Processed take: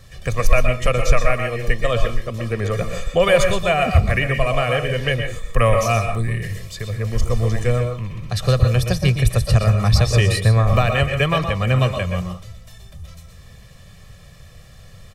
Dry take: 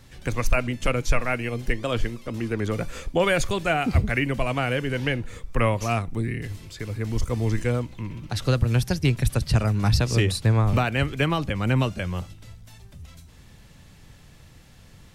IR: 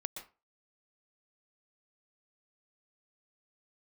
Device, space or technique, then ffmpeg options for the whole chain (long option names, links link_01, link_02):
microphone above a desk: -filter_complex "[0:a]aecho=1:1:1.7:0.73[link_01];[1:a]atrim=start_sample=2205[link_02];[link_01][link_02]afir=irnorm=-1:irlink=0,asettb=1/sr,asplit=3[link_03][link_04][link_05];[link_03]atrim=end=5.084[link_06];[link_04]atrim=start=5.08:end=6.82,asetpts=PTS-STARTPTS,afade=type=in:duration=0.004:curve=qsin,afade=type=out:start_time=1.736:duration=0.004:curve=qsin,highshelf=frequency=5700:gain=5.5[link_07];[link_05]atrim=start=6.816[link_08];[link_06][link_07]acrossfade=duration=0.004:curve1=hsin:curve2=qsin[link_09];[link_09][link_08]acrossfade=duration=0.004:curve1=qsin:curve2=hsin,volume=4.5dB"